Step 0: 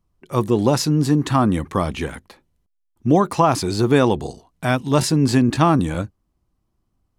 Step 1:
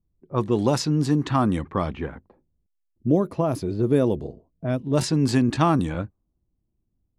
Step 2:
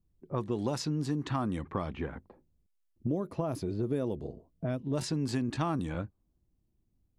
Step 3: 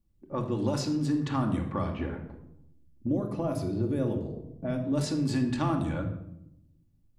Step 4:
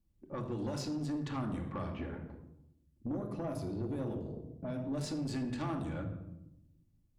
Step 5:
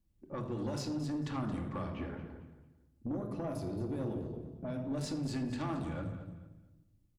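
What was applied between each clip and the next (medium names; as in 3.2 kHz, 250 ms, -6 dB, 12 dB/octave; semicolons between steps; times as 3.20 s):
level-controlled noise filter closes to 430 Hz, open at -12 dBFS; time-frequency box 2.85–4.97 s, 670–9600 Hz -11 dB; trim -4 dB
compression 3:1, threshold -32 dBFS, peak gain reduction 13.5 dB
simulated room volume 2300 m³, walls furnished, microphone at 2.4 m
in parallel at 0 dB: compression, threshold -36 dBFS, peak gain reduction 13 dB; on the sum: valve stage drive 22 dB, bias 0.35; trim -8 dB
feedback delay 224 ms, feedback 28%, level -12.5 dB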